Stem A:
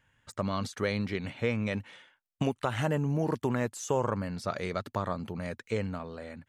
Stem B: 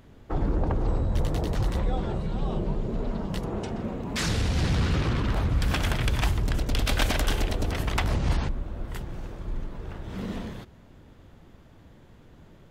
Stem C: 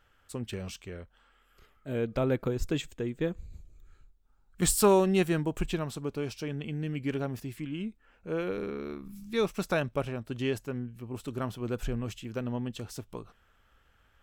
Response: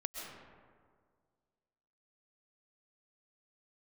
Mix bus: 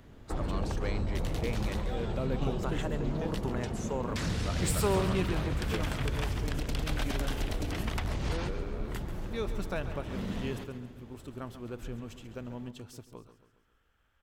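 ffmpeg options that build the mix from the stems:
-filter_complex "[0:a]volume=-7.5dB[a];[1:a]acrossover=split=190|1800[b][c][d];[b]acompressor=threshold=-30dB:ratio=4[e];[c]acompressor=threshold=-37dB:ratio=4[f];[d]acompressor=threshold=-40dB:ratio=4[g];[e][f][g]amix=inputs=3:normalize=0,volume=-1.5dB,asplit=2[h][i];[i]volume=-11.5dB[j];[2:a]volume=-7.5dB,asplit=2[k][l];[l]volume=-12.5dB[m];[j][m]amix=inputs=2:normalize=0,aecho=0:1:137|274|411|548|685|822|959:1|0.48|0.23|0.111|0.0531|0.0255|0.0122[n];[a][h][k][n]amix=inputs=4:normalize=0"

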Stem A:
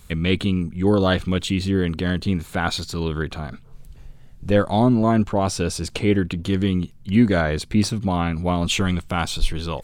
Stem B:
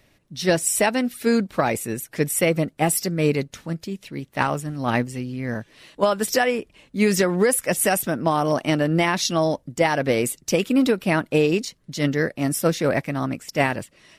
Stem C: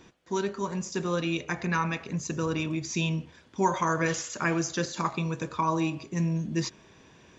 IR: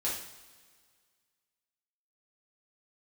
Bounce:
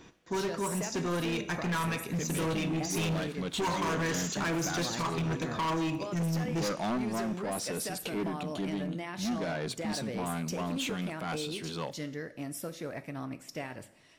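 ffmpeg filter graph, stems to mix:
-filter_complex "[0:a]highpass=f=150:w=0.5412,highpass=f=150:w=1.3066,asoftclip=type=tanh:threshold=-20dB,adelay=2100,volume=-5.5dB,asplit=2[a][b];[b]volume=-24dB[c];[1:a]acompressor=threshold=-24dB:ratio=12,agate=range=-33dB:threshold=-53dB:ratio=3:detection=peak,volume=-12dB,asplit=3[d][e][f];[e]volume=-13.5dB[g];[2:a]volume=-0.5dB,asplit=2[h][i];[i]volume=-15.5dB[j];[f]apad=whole_len=526537[k];[a][k]sidechaincompress=threshold=-40dB:ratio=8:attack=44:release=630[l];[3:a]atrim=start_sample=2205[m];[c][g][j]amix=inputs=3:normalize=0[n];[n][m]afir=irnorm=-1:irlink=0[o];[l][d][h][o]amix=inputs=4:normalize=0,asoftclip=type=hard:threshold=-28dB"

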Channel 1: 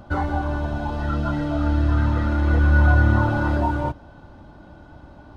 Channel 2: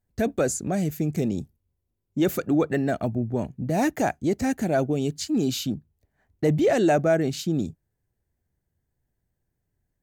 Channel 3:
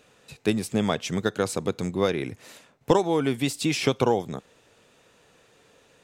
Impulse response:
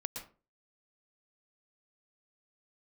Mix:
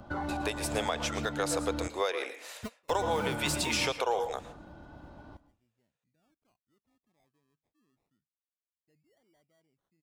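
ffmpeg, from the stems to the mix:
-filter_complex "[0:a]acrossover=split=130|3000[a][b][c];[a]acompressor=threshold=-52dB:ratio=1.5[d];[d][b][c]amix=inputs=3:normalize=0,alimiter=limit=-19dB:level=0:latency=1:release=95,acompressor=threshold=-25dB:ratio=6,volume=-6.5dB,asplit=3[e][f][g];[e]atrim=end=1.88,asetpts=PTS-STARTPTS,afade=t=out:st=1.876:d=0.004:c=hsin[h];[f]atrim=start=1.88:end=2.91,asetpts=PTS-STARTPTS,volume=0[i];[g]atrim=start=2.91,asetpts=PTS-STARTPTS,afade=t=in:d=0.004:c=hsin[j];[h][i][j]concat=n=3:v=0:a=1,asplit=2[k][l];[l]volume=-11dB[m];[1:a]acrusher=samples=24:mix=1:aa=0.000001:lfo=1:lforange=14.4:lforate=0.25,adelay=2450,volume=-11.5dB[n];[2:a]highpass=f=520:w=0.5412,highpass=f=520:w=1.3066,agate=range=-34dB:threshold=-53dB:ratio=16:detection=peak,volume=-1.5dB,asplit=3[o][p][q];[p]volume=-3.5dB[r];[q]apad=whole_len=549984[s];[n][s]sidechaingate=range=-40dB:threshold=-56dB:ratio=16:detection=peak[t];[3:a]atrim=start_sample=2205[u];[m][r]amix=inputs=2:normalize=0[v];[v][u]afir=irnorm=-1:irlink=0[w];[k][t][o][w]amix=inputs=4:normalize=0,alimiter=limit=-18.5dB:level=0:latency=1:release=255"

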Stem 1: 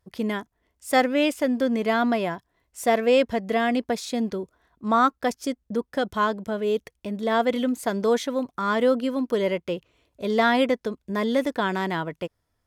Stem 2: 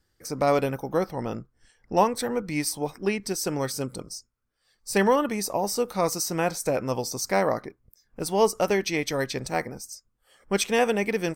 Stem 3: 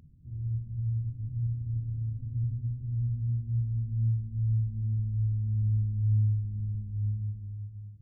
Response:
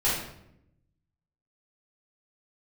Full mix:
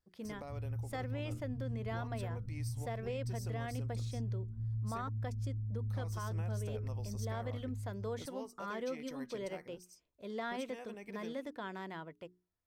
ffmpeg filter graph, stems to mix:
-filter_complex "[0:a]highshelf=f=5.7k:g=-4.5,bandreject=f=60:t=h:w=6,bandreject=f=120:t=h:w=6,bandreject=f=180:t=h:w=6,bandreject=f=240:t=h:w=6,bandreject=f=300:t=h:w=6,bandreject=f=360:t=h:w=6,bandreject=f=420:t=h:w=6,volume=-17.5dB[a];[1:a]acompressor=threshold=-25dB:ratio=6,volume=-19.5dB,asplit=3[b][c][d];[b]atrim=end=5.09,asetpts=PTS-STARTPTS,afade=t=out:st=5.086:d=0.004:c=hsin[e];[c]atrim=start=5.09:end=5.9,asetpts=PTS-STARTPTS,volume=0[f];[d]atrim=start=5.9,asetpts=PTS-STARTPTS,afade=t=in:d=0.004:c=hsin[g];[e][f][g]concat=n=3:v=0:a=1[h];[2:a]acompressor=threshold=-41dB:ratio=2.5,adelay=250,volume=0dB[i];[a][h][i]amix=inputs=3:normalize=0,alimiter=level_in=6.5dB:limit=-24dB:level=0:latency=1:release=76,volume=-6.5dB"

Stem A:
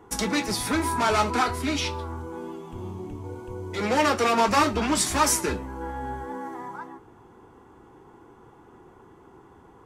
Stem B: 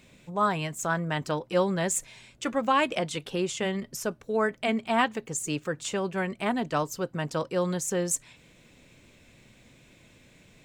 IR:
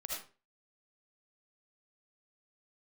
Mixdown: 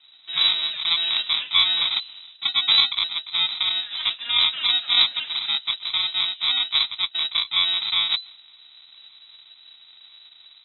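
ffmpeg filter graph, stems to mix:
-filter_complex "[0:a]volume=-12dB[a];[1:a]dynaudnorm=f=170:g=3:m=3.5dB,equalizer=f=95:w=3.8:g=12,acrusher=samples=38:mix=1:aa=0.000001,volume=2dB,asplit=2[b][c];[c]apad=whole_len=434437[d];[a][d]sidechaingate=range=-33dB:threshold=-48dB:ratio=16:detection=peak[e];[e][b]amix=inputs=2:normalize=0,lowpass=f=3.4k:t=q:w=0.5098,lowpass=f=3.4k:t=q:w=0.6013,lowpass=f=3.4k:t=q:w=0.9,lowpass=f=3.4k:t=q:w=2.563,afreqshift=-4000"

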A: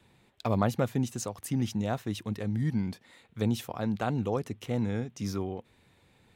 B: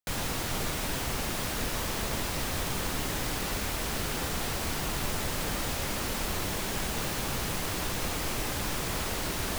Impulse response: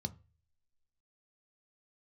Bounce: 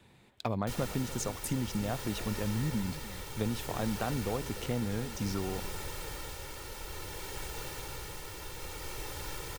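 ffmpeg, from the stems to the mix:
-filter_complex "[0:a]acompressor=threshold=-32dB:ratio=4,volume=2dB,asplit=2[a][b];[b]volume=-15.5dB[c];[1:a]aecho=1:1:2.2:0.75,tremolo=f=0.58:d=0.31,adelay=600,volume=-10.5dB[d];[c]aecho=0:1:295:1[e];[a][d][e]amix=inputs=3:normalize=0"

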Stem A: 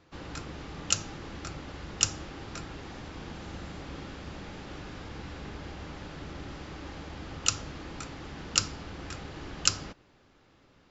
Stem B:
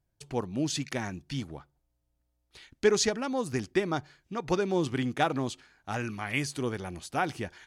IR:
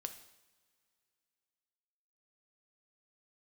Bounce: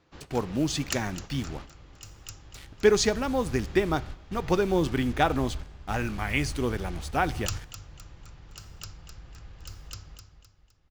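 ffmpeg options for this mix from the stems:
-filter_complex "[0:a]asubboost=boost=8.5:cutoff=87,aeval=exprs='0.224*(abs(mod(val(0)/0.224+3,4)-2)-1)':c=same,volume=-5.5dB,asplit=3[a][b][c];[b]volume=-11.5dB[d];[c]volume=-9.5dB[e];[1:a]highshelf=f=7.3k:g=-6.5,acrusher=bits=7:mix=0:aa=0.5,volume=0.5dB,asplit=3[f][g][h];[g]volume=-5.5dB[i];[h]apad=whole_len=480822[j];[a][j]sidechaingate=range=-33dB:threshold=-47dB:ratio=16:detection=peak[k];[2:a]atrim=start_sample=2205[l];[d][i]amix=inputs=2:normalize=0[m];[m][l]afir=irnorm=-1:irlink=0[n];[e]aecho=0:1:257|514|771|1028|1285:1|0.37|0.137|0.0507|0.0187[o];[k][f][n][o]amix=inputs=4:normalize=0"

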